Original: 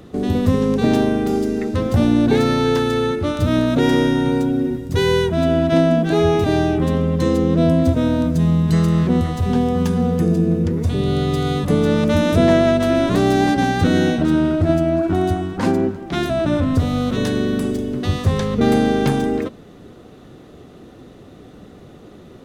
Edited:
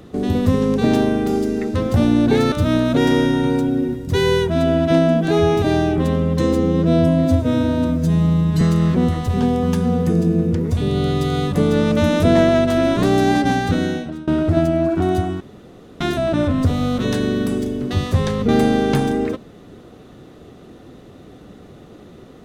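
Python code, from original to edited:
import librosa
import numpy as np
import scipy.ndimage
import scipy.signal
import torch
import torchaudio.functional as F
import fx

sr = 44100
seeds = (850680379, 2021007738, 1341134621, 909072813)

y = fx.edit(x, sr, fx.cut(start_s=2.52, length_s=0.82),
    fx.stretch_span(start_s=7.35, length_s=1.39, factor=1.5),
    fx.fade_out_to(start_s=13.65, length_s=0.75, floor_db=-23.5),
    fx.room_tone_fill(start_s=15.53, length_s=0.6), tone=tone)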